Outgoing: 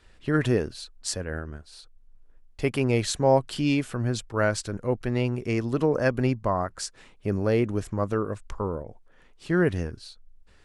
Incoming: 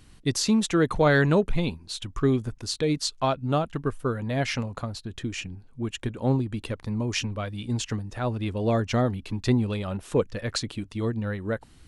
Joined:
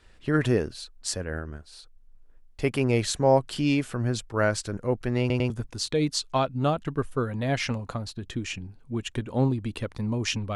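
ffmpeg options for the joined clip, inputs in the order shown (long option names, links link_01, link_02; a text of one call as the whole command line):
ffmpeg -i cue0.wav -i cue1.wav -filter_complex "[0:a]apad=whole_dur=10.55,atrim=end=10.55,asplit=3[link_01][link_02][link_03];[link_01]atrim=end=5.302[link_04];[link_02]atrim=start=5.198:end=5.302[link_05];[link_03]atrim=start=5.198:end=5.302[link_06];[1:a]atrim=start=2.378:end=7.43[link_07];[link_04][link_05]acrossfade=duration=0.004:curve1=hsin:curve2=hsin[link_08];[link_08][link_06]acrossfade=duration=0.004:curve1=hsin:curve2=hsin[link_09];[link_09][link_07]acrossfade=duration=0.004:curve1=hsin:curve2=hsin" out.wav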